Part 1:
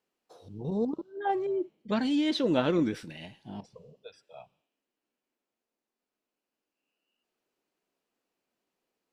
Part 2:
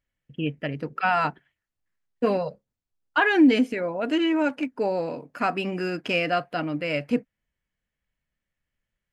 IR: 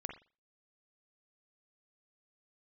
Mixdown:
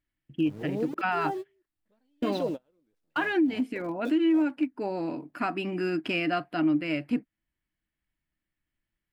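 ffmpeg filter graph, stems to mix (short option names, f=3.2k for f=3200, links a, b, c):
-filter_complex "[0:a]acompressor=threshold=-38dB:ratio=2.5,aeval=exprs='val(0)*gte(abs(val(0)),0.00422)':c=same,equalizer=f=530:w=1.3:g=8.5,volume=2.5dB[a];[1:a]equalizer=f=315:t=o:w=0.33:g=12,equalizer=f=500:t=o:w=0.33:g=-11,equalizer=f=6.3k:t=o:w=0.33:g=-10,volume=-2.5dB,asplit=2[b][c];[c]apad=whole_len=402195[d];[a][d]sidechaingate=range=-41dB:threshold=-41dB:ratio=16:detection=peak[e];[e][b]amix=inputs=2:normalize=0,alimiter=limit=-17.5dB:level=0:latency=1:release=480"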